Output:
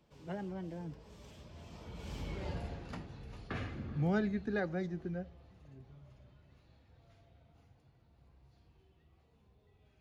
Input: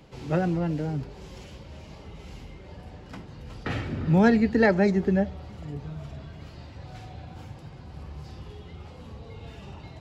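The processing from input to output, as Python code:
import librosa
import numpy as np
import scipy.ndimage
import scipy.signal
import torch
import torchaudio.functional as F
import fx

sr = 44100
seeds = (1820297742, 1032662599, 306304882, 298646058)

y = fx.doppler_pass(x, sr, speed_mps=32, closest_m=6.7, pass_at_s=2.44)
y = F.gain(torch.from_numpy(y), 4.5).numpy()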